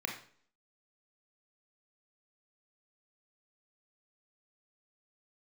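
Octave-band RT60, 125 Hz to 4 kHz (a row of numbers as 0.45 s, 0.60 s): 0.50 s, 0.60 s, 0.55 s, 0.50 s, 0.45 s, 0.50 s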